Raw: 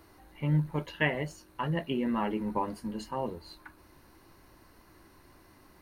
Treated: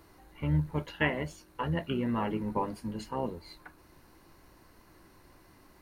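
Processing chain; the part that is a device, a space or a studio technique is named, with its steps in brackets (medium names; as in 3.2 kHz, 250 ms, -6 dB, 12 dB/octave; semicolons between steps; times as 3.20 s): octave pedal (harmony voices -12 st -9 dB); trim -1 dB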